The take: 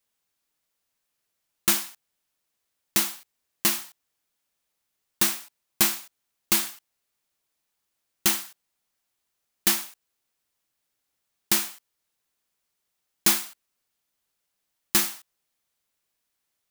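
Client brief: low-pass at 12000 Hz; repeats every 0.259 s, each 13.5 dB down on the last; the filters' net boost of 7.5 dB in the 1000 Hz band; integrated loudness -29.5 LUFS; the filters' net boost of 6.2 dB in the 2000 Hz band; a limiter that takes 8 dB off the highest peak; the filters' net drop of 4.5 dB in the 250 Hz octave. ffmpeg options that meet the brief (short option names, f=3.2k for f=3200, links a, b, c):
-af "lowpass=12k,equalizer=f=250:t=o:g=-7.5,equalizer=f=1k:t=o:g=8,equalizer=f=2k:t=o:g=5.5,alimiter=limit=-12dB:level=0:latency=1,aecho=1:1:259|518:0.211|0.0444,volume=-0.5dB"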